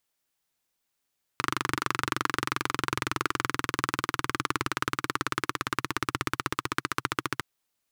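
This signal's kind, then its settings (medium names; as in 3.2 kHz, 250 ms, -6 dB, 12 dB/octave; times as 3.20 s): single-cylinder engine model, changing speed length 6.01 s, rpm 2900, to 1700, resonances 130/310/1200 Hz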